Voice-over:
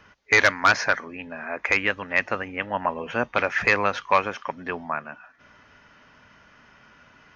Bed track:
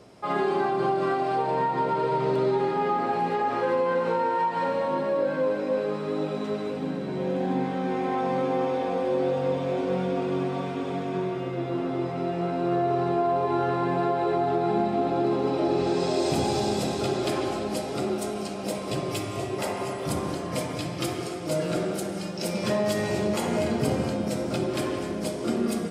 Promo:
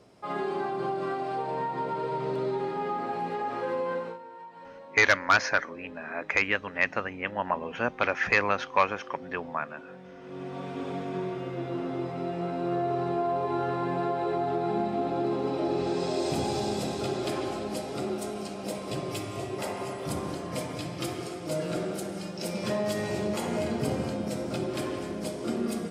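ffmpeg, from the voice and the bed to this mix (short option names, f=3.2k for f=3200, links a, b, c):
-filter_complex "[0:a]adelay=4650,volume=-3.5dB[a];[1:a]volume=10.5dB,afade=t=out:st=3.94:d=0.25:silence=0.188365,afade=t=in:st=10.2:d=0.63:silence=0.149624[b];[a][b]amix=inputs=2:normalize=0"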